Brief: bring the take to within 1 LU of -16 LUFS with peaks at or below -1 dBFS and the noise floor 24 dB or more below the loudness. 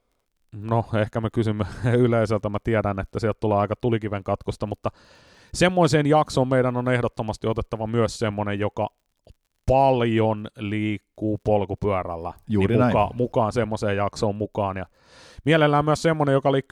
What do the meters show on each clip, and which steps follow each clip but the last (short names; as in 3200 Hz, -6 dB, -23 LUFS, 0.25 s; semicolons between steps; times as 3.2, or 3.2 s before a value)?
ticks 45/s; loudness -23.0 LUFS; peak -4.0 dBFS; loudness target -16.0 LUFS
-> de-click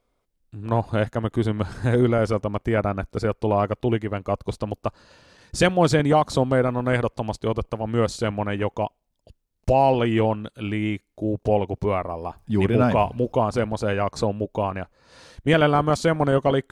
ticks 0.12/s; loudness -23.0 LUFS; peak -4.0 dBFS; loudness target -16.0 LUFS
-> gain +7 dB; limiter -1 dBFS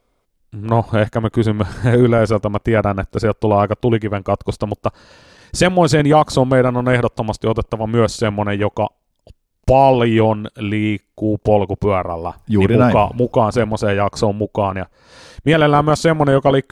loudness -16.5 LUFS; peak -1.0 dBFS; noise floor -66 dBFS